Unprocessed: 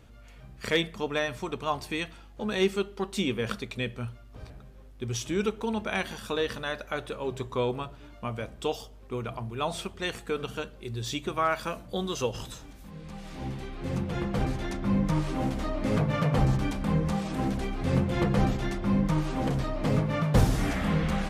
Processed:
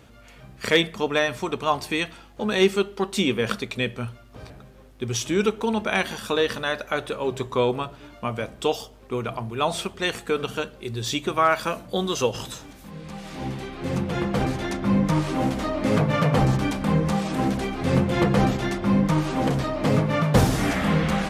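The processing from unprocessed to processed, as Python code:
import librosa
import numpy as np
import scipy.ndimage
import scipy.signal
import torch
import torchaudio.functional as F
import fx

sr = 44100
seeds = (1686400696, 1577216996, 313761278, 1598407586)

y = fx.highpass(x, sr, hz=140.0, slope=6)
y = y * 10.0 ** (7.0 / 20.0)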